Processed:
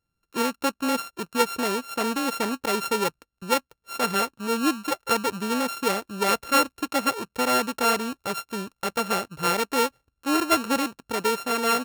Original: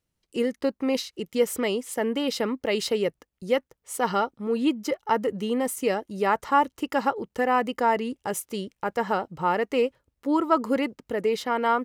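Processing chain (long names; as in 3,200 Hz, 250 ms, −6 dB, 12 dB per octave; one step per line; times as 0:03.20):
samples sorted by size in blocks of 32 samples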